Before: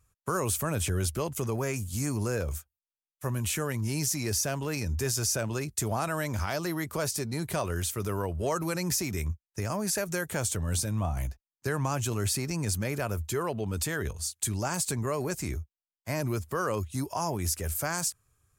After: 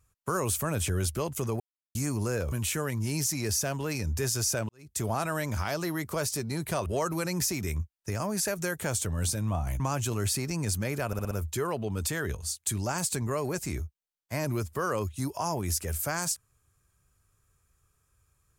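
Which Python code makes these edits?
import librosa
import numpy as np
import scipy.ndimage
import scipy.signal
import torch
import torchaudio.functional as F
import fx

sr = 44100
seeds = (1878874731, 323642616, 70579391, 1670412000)

y = fx.edit(x, sr, fx.silence(start_s=1.6, length_s=0.35),
    fx.cut(start_s=2.52, length_s=0.82),
    fx.fade_in_span(start_s=5.51, length_s=0.33, curve='qua'),
    fx.cut(start_s=7.68, length_s=0.68),
    fx.cut(start_s=11.3, length_s=0.5),
    fx.stutter(start_s=13.07, slice_s=0.06, count=5), tone=tone)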